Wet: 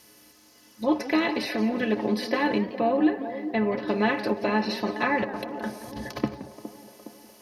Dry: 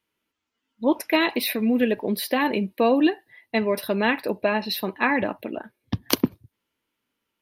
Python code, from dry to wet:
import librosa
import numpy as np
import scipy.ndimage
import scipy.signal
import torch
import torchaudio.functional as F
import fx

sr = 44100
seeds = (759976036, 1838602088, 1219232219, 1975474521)

y = fx.bin_compress(x, sr, power=0.6)
y = fx.band_shelf(y, sr, hz=7800.0, db=12.5, octaves=1.7)
y = fx.env_lowpass_down(y, sr, base_hz=2800.0, full_db=-16.0)
y = fx.air_absorb(y, sr, metres=320.0, at=(2.58, 3.88))
y = fx.over_compress(y, sr, threshold_db=-32.0, ratio=-1.0, at=(5.24, 6.19))
y = fx.quant_dither(y, sr, seeds[0], bits=12, dither='triangular')
y = fx.stiff_resonator(y, sr, f0_hz=63.0, decay_s=0.21, stiffness=0.03)
y = fx.echo_wet_bandpass(y, sr, ms=413, feedback_pct=60, hz=450.0, wet_db=-11.0)
y = fx.echo_warbled(y, sr, ms=173, feedback_pct=34, rate_hz=2.8, cents=178, wet_db=-15.5)